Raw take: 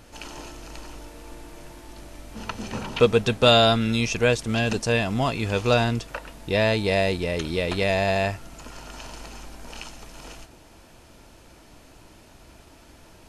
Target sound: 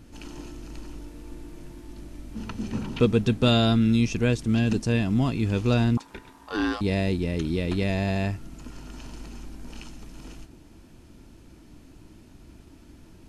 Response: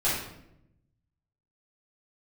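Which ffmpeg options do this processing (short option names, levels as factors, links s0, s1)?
-filter_complex "[0:a]asettb=1/sr,asplit=3[s0][s1][s2];[s0]atrim=end=5.974[s3];[s1]atrim=start=5.97:end=6.81,asetpts=PTS-STARTPTS,afade=t=in:d=0.004:c=qsin,afade=t=out:st=0.836:d=0.004:c=qsin,aeval=exprs='val(0)*sin(2*PI*940*n/s)':c=same[s4];[s2]atrim=start=6.806[s5];[s3][s4]acrossfade=d=0.004:c1=hsin:c2=qsin[s6];[s6][s5]acrossfade=d=0.004:c1=qsin:c2=hsin,lowshelf=f=410:t=q:w=1.5:g=9,volume=0.447"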